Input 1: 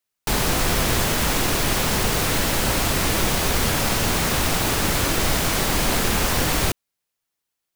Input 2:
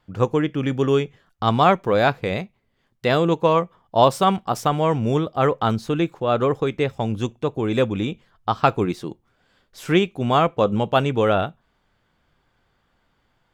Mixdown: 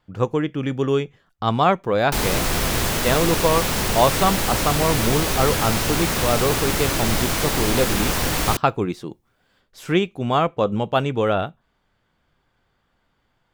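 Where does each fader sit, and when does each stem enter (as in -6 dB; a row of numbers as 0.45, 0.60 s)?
-1.0, -1.5 dB; 1.85, 0.00 s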